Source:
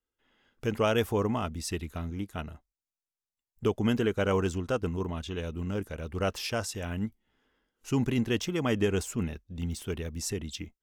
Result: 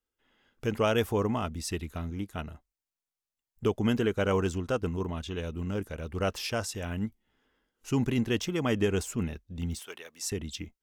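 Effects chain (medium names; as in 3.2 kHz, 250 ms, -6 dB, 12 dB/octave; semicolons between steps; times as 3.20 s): 9.79–10.32 s: high-pass 760 Hz 12 dB/octave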